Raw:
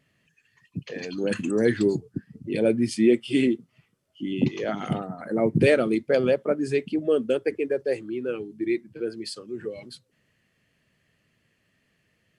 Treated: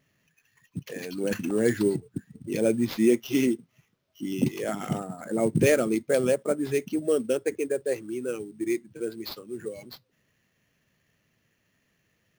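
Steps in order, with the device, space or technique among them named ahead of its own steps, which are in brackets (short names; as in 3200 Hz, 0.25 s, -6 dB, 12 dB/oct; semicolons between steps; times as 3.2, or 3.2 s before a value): early companding sampler (sample-rate reducer 8700 Hz, jitter 0%; companded quantiser 8-bit); gain -2 dB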